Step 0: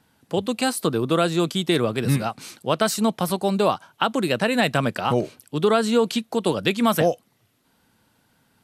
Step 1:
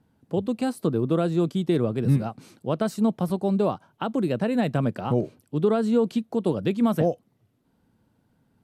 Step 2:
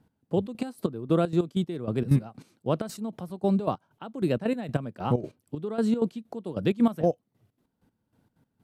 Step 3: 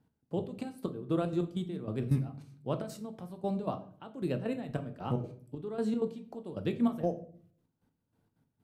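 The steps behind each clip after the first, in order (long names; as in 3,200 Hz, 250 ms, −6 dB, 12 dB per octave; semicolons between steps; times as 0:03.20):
tilt shelving filter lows +8.5 dB, about 820 Hz; level −7 dB
gate pattern "x...xx.x.." 192 BPM −12 dB
rectangular room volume 57 cubic metres, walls mixed, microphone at 0.31 metres; level −8 dB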